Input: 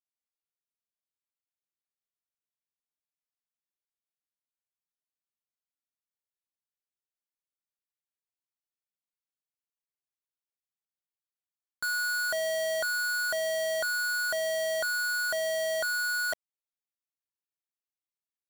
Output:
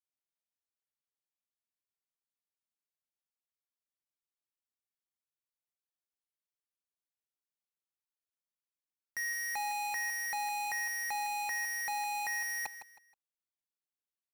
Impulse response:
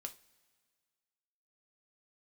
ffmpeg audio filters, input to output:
-af "asetrate=56889,aresample=44100,aecho=1:1:159|318|477:0.282|0.0817|0.0237,volume=-5.5dB"

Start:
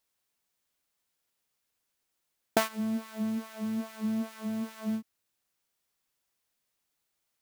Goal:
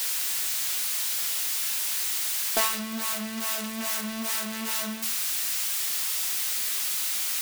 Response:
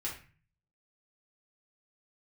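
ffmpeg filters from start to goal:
-filter_complex "[0:a]aeval=exprs='val(0)+0.5*0.0266*sgn(val(0))':c=same,highpass=f=120:w=0.5412,highpass=f=120:w=1.3066,tiltshelf=f=1.1k:g=-8.5,asoftclip=type=tanh:threshold=-17.5dB,asplit=2[a][b];[1:a]atrim=start_sample=2205[c];[b][c]afir=irnorm=-1:irlink=0,volume=-4.5dB[d];[a][d]amix=inputs=2:normalize=0,volume=-1dB"

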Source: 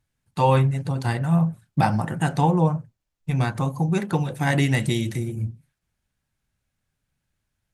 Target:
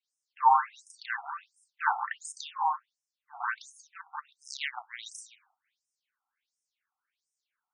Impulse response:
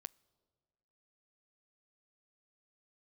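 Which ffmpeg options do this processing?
-filter_complex "[0:a]asettb=1/sr,asplit=3[a][b][c];[a]atrim=end=3.924[d];[b]atrim=start=3.92:end=5.03,asetpts=PTS-STARTPTS,afade=t=in:d=0.004:c=qsin,afade=t=out:st=1.106:d=0.004:c=qsin,aeval=exprs='0.398*(cos(1*acos(clip(val(0)/0.398,-1,1)))-cos(1*PI/2))+0.126*(cos(3*acos(clip(val(0)/0.398,-1,1)))-cos(3*PI/2))':c=same[e];[c]atrim=start=5.026[f];[d][e]acrossfade=d=0.004:c1=hsin:c2=qsin[g];[g][f]acrossfade=d=0.004:c1=qsin:c2=hsin,asplit=2[h][i];[1:a]atrim=start_sample=2205,adelay=34[j];[i][j]afir=irnorm=-1:irlink=0,volume=12dB[k];[h][k]amix=inputs=2:normalize=0,afftfilt=real='re*between(b*sr/1024,970*pow(7300/970,0.5+0.5*sin(2*PI*1.4*pts/sr))/1.41,970*pow(7300/970,0.5+0.5*sin(2*PI*1.4*pts/sr))*1.41)':imag='im*between(b*sr/1024,970*pow(7300/970,0.5+0.5*sin(2*PI*1.4*pts/sr))/1.41,970*pow(7300/970,0.5+0.5*sin(2*PI*1.4*pts/sr))*1.41)':win_size=1024:overlap=0.75,volume=-5dB"

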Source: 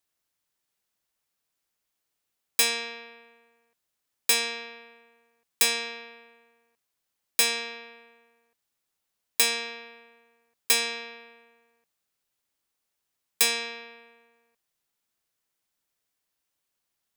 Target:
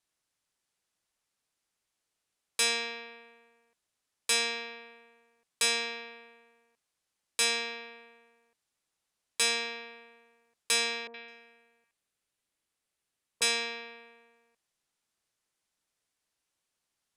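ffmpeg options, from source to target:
-filter_complex "[0:a]asoftclip=type=tanh:threshold=-19.5dB,lowpass=f=11k:w=0.5412,lowpass=f=11k:w=1.3066,asettb=1/sr,asplit=3[a][b][c];[a]atrim=end=11.074[d];[b]atrim=start=11.07:end=13.42,asetpts=PTS-STARTPTS,afade=t=in:d=0.004:c=qsin,afade=t=out:st=2.346:d=0.004:c=qsin,acrossover=split=970|5500[e][f][g];[f]adelay=70[h];[g]adelay=210[i];[e][h][i]amix=inputs=3:normalize=0,atrim=end_sample=103635[j];[c]atrim=start=13.416[k];[d][j]acrossfade=d=0.004:c1=hsin:c2=qsin[l];[l][k]acrossfade=d=0.004:c1=qsin:c2=hsin"

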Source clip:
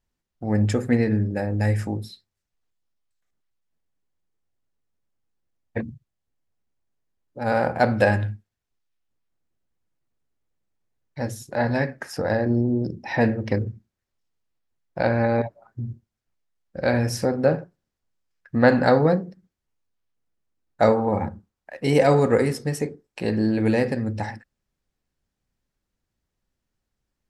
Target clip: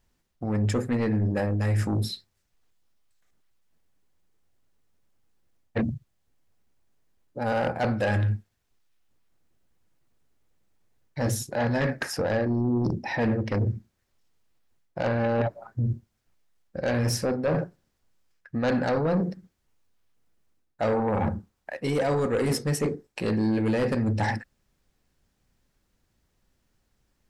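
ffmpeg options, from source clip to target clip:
-af "areverse,acompressor=threshold=-29dB:ratio=6,areverse,aeval=exprs='0.106*sin(PI/2*1.78*val(0)/0.106)':c=same"

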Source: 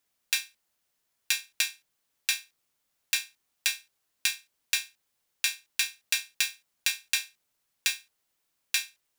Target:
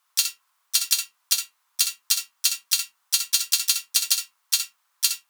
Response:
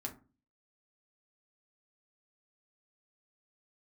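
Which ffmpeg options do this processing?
-filter_complex "[0:a]highpass=f=610:t=q:w=4.9,acontrast=28,asplit=4[a][b][c][d];[b]asetrate=37084,aresample=44100,atempo=1.18921,volume=-11dB[e];[c]asetrate=55563,aresample=44100,atempo=0.793701,volume=-7dB[f];[d]asetrate=58866,aresample=44100,atempo=0.749154,volume=-16dB[g];[a][e][f][g]amix=inputs=4:normalize=0,asplit=2[h][i];[1:a]atrim=start_sample=2205,adelay=108[j];[i][j]afir=irnorm=-1:irlink=0,volume=-5dB[k];[h][k]amix=inputs=2:normalize=0,asetrate=76440,aresample=44100,volume=1.5dB"

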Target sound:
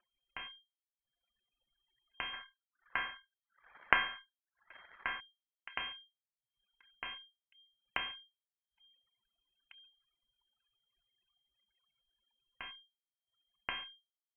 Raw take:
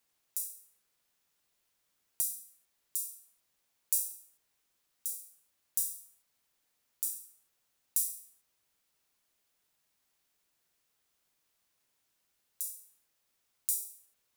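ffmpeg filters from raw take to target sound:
-filter_complex "[0:a]aeval=exprs='if(lt(val(0),0),0.447*val(0),val(0))':c=same,lowshelf=f=190:g=-6,aeval=exprs='0.335*(cos(1*acos(clip(val(0)/0.335,-1,1)))-cos(1*PI/2))+0.15*(cos(2*acos(clip(val(0)/0.335,-1,1)))-cos(2*PI/2))+0.0422*(cos(4*acos(clip(val(0)/0.335,-1,1)))-cos(4*PI/2))':c=same,asplit=3[a][b][c];[a]afade=t=out:st=2.32:d=0.02[d];[b]equalizer=f=1.6k:t=o:w=1.8:g=11.5,afade=t=in:st=2.32:d=0.02,afade=t=out:st=5.19:d=0.02[e];[c]afade=t=in:st=5.19:d=0.02[f];[d][e][f]amix=inputs=3:normalize=0,acompressor=mode=upward:threshold=-41dB:ratio=2.5,asplit=2[g][h];[h]adelay=1749,volume=-17dB,highshelf=f=4k:g=-39.4[i];[g][i]amix=inputs=2:normalize=0,afftfilt=real='re*gte(hypot(re,im),0.00112)':imag='im*gte(hypot(re,im),0.00112)':win_size=1024:overlap=0.75,lowpass=f=2.7k:t=q:w=0.5098,lowpass=f=2.7k:t=q:w=0.6013,lowpass=f=2.7k:t=q:w=0.9,lowpass=f=2.7k:t=q:w=2.563,afreqshift=-3200,anlmdn=0.0000398,volume=8dB"

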